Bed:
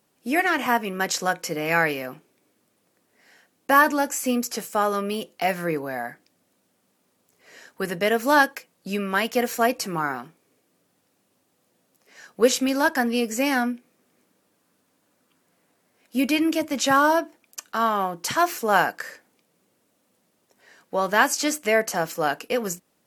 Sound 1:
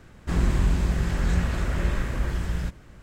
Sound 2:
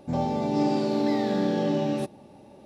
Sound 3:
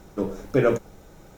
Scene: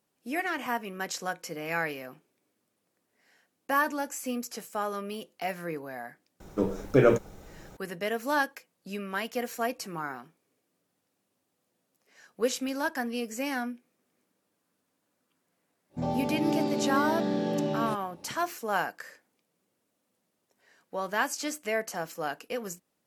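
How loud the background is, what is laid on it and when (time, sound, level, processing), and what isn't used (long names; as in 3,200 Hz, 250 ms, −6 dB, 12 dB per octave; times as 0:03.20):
bed −9.5 dB
0:06.40: mix in 3 −0.5 dB
0:15.89: mix in 2 −4 dB, fades 0.10 s
not used: 1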